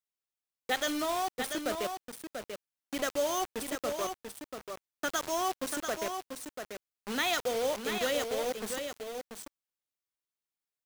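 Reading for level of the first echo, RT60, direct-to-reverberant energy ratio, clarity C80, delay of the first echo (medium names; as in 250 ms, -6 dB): -6.5 dB, no reverb, no reverb, no reverb, 689 ms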